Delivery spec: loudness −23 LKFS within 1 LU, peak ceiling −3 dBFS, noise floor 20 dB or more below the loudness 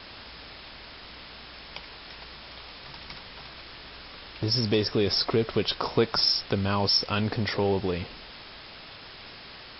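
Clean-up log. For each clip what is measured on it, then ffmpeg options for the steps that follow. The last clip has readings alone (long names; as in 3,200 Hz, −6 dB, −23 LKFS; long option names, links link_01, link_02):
background noise floor −45 dBFS; target noise floor −46 dBFS; integrated loudness −25.5 LKFS; sample peak −10.5 dBFS; target loudness −23.0 LKFS
→ -af "afftdn=noise_reduction=6:noise_floor=-45"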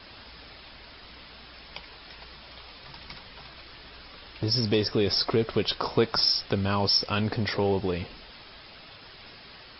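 background noise floor −48 dBFS; integrated loudness −25.5 LKFS; sample peak −10.5 dBFS; target loudness −23.0 LKFS
→ -af "volume=2.5dB"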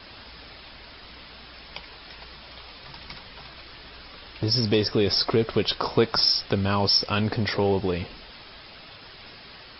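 integrated loudness −23.0 LKFS; sample peak −8.0 dBFS; background noise floor −46 dBFS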